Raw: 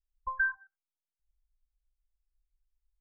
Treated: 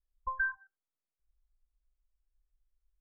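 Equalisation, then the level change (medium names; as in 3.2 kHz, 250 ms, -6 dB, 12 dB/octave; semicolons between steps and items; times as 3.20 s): low-pass 1.3 kHz; band-stop 850 Hz, Q 5.2; +2.0 dB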